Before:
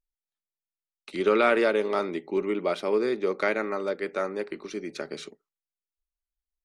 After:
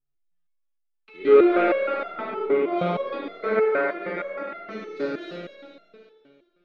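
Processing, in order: spectral sustain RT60 2.03 s; in parallel at -3 dB: overload inside the chain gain 16.5 dB; on the sum: distance through air 310 m; spring tank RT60 1.5 s, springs 57 ms, chirp 20 ms, DRR 0 dB; resonator arpeggio 6.4 Hz 140–690 Hz; trim +5.5 dB

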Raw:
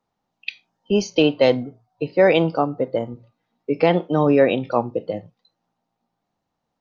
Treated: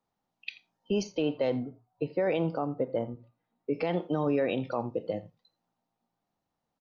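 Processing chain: 1.03–3.75 s: treble shelf 3.2 kHz -10.5 dB; peak limiter -13 dBFS, peak gain reduction 9 dB; delay 84 ms -20.5 dB; trim -6 dB

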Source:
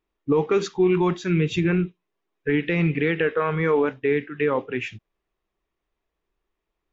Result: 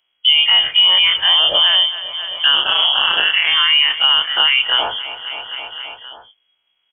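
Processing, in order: every event in the spectrogram widened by 60 ms; 2.55–3.47 s: ring modulator 100 Hz; gate with hold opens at -32 dBFS; frequency inversion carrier 3.3 kHz; bass shelf 240 Hz -8 dB; on a send: feedback delay 265 ms, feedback 56%, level -19 dB; on the sum: loudness maximiser +10 dB; three bands compressed up and down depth 70%; trim -3 dB

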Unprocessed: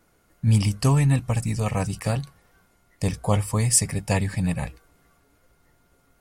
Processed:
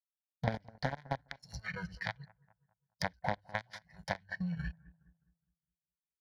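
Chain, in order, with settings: companded quantiser 2-bit; spectral noise reduction 23 dB; peaking EQ 97 Hz -8.5 dB 0.77 oct; transient shaper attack -1 dB, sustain -6 dB; compression 4:1, threshold -36 dBFS, peak gain reduction 24.5 dB; high-pass 45 Hz; treble shelf 10 kHz -5 dB; static phaser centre 1.8 kHz, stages 8; on a send: bucket-brigade echo 207 ms, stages 2048, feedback 35%, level -16 dB; on the sum: low-pass that closes with the level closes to 2.5 kHz, closed at -43.5 dBFS; transient shaper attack +4 dB, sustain -8 dB; trim +3 dB

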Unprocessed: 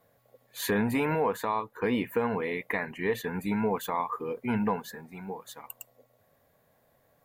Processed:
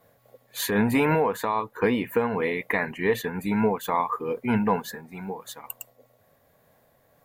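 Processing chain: random flutter of the level, depth 60%; trim +7 dB

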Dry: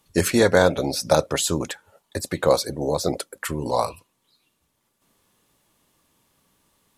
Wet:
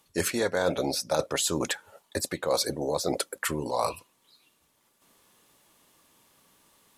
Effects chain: bass shelf 190 Hz -9.5 dB; reverse; compression 4:1, threshold -29 dBFS, peak gain reduction 14.5 dB; reverse; trim +4 dB

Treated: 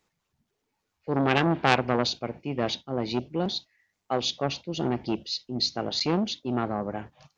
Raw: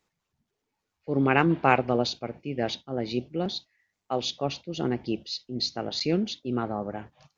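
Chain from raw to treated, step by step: transformer saturation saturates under 1.9 kHz; trim +2.5 dB

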